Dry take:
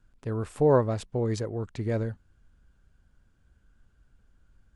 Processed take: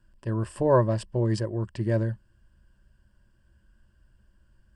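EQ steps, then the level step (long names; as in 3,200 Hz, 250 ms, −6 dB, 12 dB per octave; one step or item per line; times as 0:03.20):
EQ curve with evenly spaced ripples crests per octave 1.3, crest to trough 11 dB
0.0 dB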